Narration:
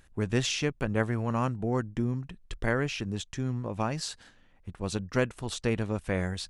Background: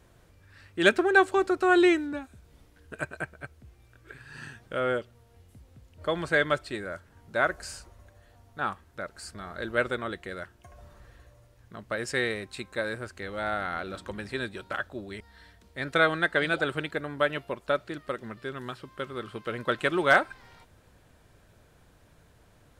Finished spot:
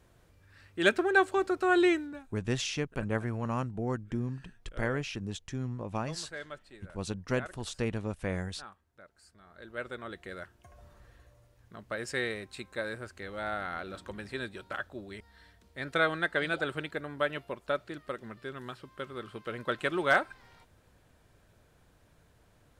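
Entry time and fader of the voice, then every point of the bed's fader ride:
2.15 s, -4.0 dB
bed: 1.95 s -4 dB
2.48 s -18 dB
9.38 s -18 dB
10.31 s -4.5 dB

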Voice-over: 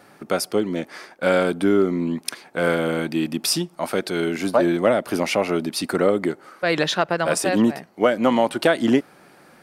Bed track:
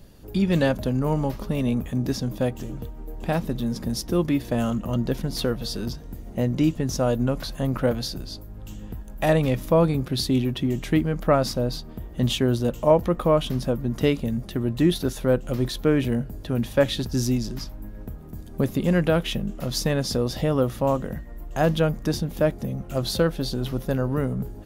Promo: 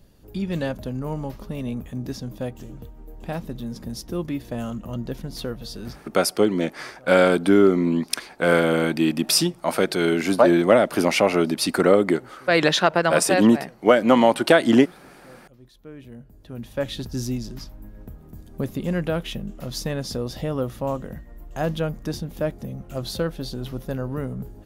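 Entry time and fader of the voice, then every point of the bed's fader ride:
5.85 s, +2.5 dB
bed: 5.9 s -5.5 dB
6.18 s -28 dB
15.49 s -28 dB
16.98 s -4 dB

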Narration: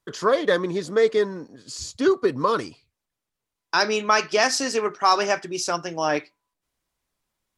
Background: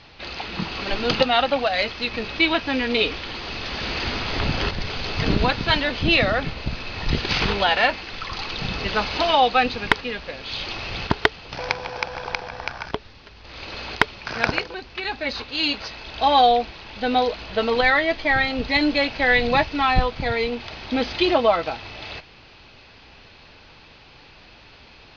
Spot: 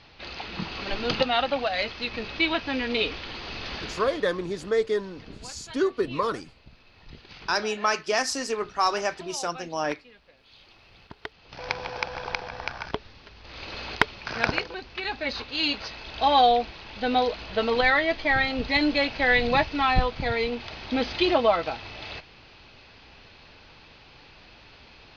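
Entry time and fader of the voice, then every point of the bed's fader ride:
3.75 s, -5.0 dB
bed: 3.74 s -5 dB
4.42 s -24 dB
11.11 s -24 dB
11.78 s -3 dB

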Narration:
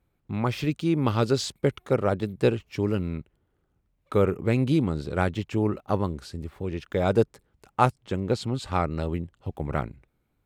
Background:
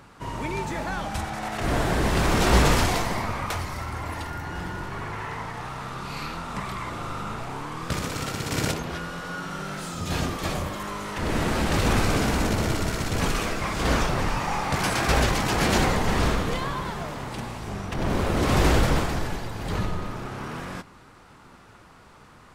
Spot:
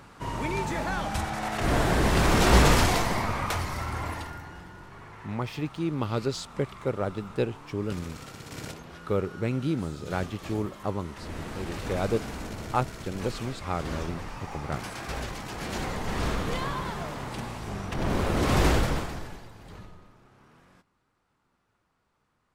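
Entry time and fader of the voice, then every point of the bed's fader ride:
4.95 s, -5.5 dB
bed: 4.05 s 0 dB
4.65 s -13 dB
15.61 s -13 dB
16.6 s -2 dB
18.66 s -2 dB
20.16 s -23.5 dB

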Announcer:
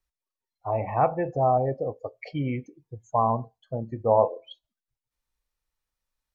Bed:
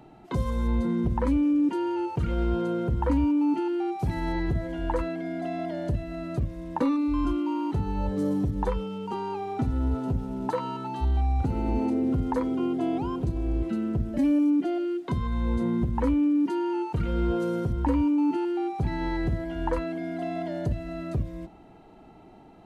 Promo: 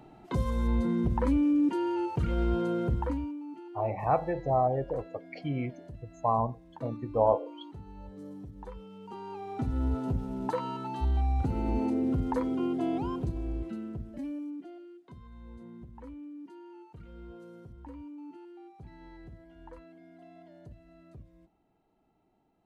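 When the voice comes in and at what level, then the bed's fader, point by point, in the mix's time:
3.10 s, -4.0 dB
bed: 2.93 s -2 dB
3.43 s -18 dB
8.58 s -18 dB
9.8 s -3 dB
13.11 s -3 dB
14.98 s -21.5 dB

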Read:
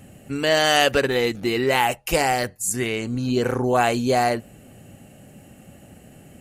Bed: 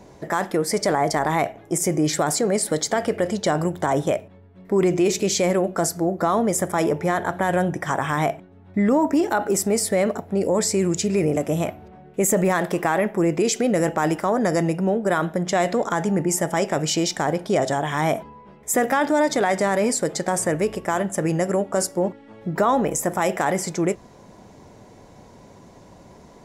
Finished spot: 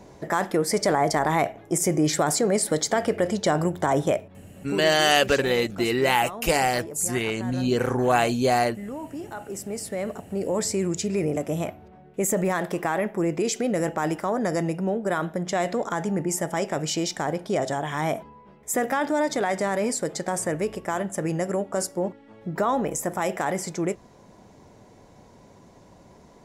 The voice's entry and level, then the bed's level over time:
4.35 s, -1.5 dB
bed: 4.58 s -1 dB
4.92 s -16.5 dB
9.16 s -16.5 dB
10.59 s -4.5 dB

